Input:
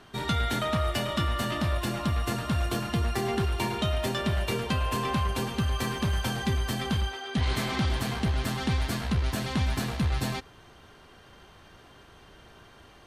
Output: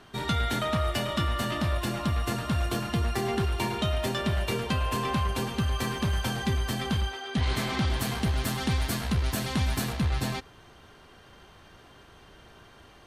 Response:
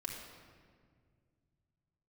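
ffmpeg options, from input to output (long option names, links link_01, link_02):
-filter_complex "[0:a]asettb=1/sr,asplit=3[link_01][link_02][link_03];[link_01]atrim=end=7.994[link_04];[link_02]atrim=start=7.99:end=9.93,asetpts=PTS-STARTPTS,afade=type=in:duration=0.004:curve=qsin,afade=type=out:start_time=1.936:duration=0.004:curve=qsin,highshelf=frequency=8100:gain=9[link_05];[link_03]atrim=start=9.926[link_06];[link_04][link_05]acrossfade=duration=0.004:curve1=hsin:curve2=qsin[link_07];[link_07][link_06]acrossfade=duration=0.004:curve1=qsin:curve2=hsin"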